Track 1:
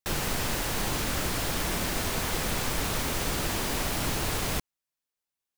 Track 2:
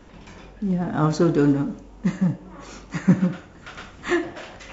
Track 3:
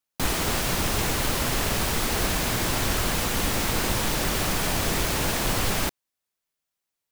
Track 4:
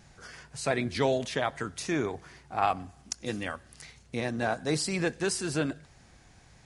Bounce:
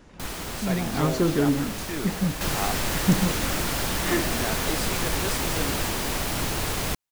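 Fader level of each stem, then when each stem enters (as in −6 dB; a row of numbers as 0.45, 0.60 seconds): +2.0, −4.0, −8.5, −4.5 decibels; 2.35, 0.00, 0.00, 0.00 seconds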